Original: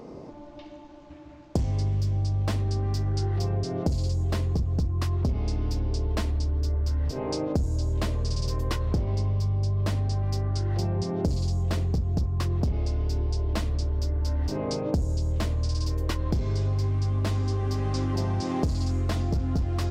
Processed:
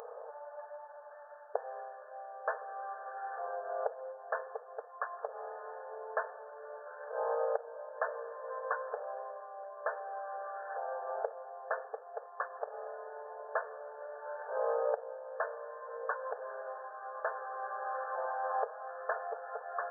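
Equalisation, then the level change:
linear-phase brick-wall band-pass 430–1,800 Hz
spectral tilt +3 dB per octave
notch filter 1,000 Hz, Q 10
+3.5 dB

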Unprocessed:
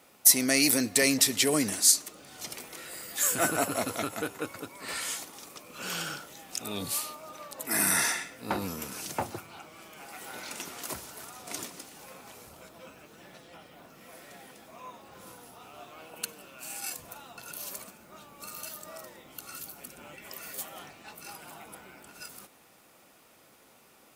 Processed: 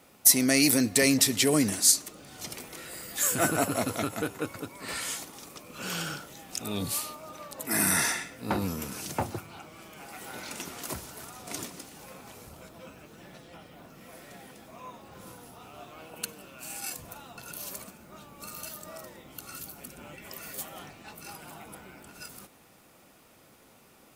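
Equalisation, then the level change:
low-shelf EQ 240 Hz +8.5 dB
0.0 dB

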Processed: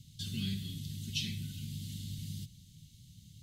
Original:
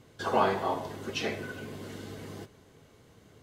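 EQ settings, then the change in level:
elliptic band-stop filter 170–3,500 Hz, stop band 80 dB
dynamic equaliser 5,500 Hz, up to −5 dB, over −59 dBFS, Q 1.3
+6.0 dB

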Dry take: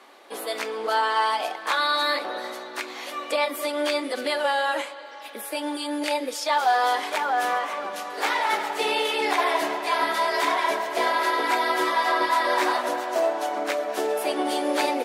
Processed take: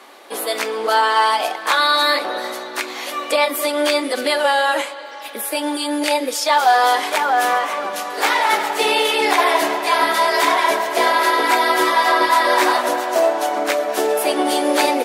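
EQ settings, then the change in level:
high-shelf EQ 7,900 Hz +6 dB
+7.0 dB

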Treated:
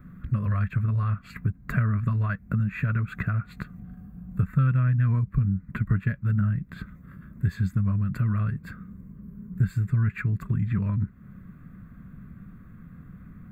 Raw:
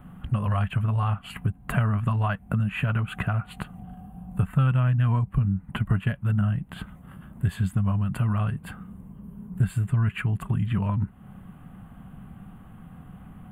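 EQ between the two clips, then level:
phaser with its sweep stopped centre 3,000 Hz, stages 6
0.0 dB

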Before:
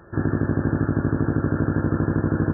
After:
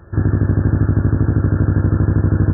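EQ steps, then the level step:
parametric band 81 Hz +7.5 dB 0.85 octaves
low-shelf EQ 130 Hz +9.5 dB
0.0 dB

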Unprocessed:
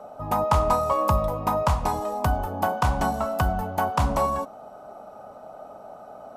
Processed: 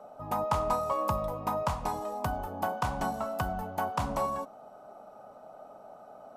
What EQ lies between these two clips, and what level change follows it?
parametric band 64 Hz −9 dB 0.88 octaves
−7.0 dB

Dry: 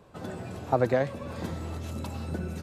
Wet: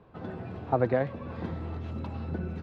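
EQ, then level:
high-frequency loss of the air 320 metres
notch filter 580 Hz, Q 12
0.0 dB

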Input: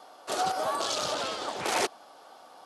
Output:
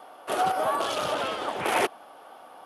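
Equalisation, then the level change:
flat-topped bell 5,600 Hz −11.5 dB 1.3 octaves
+4.0 dB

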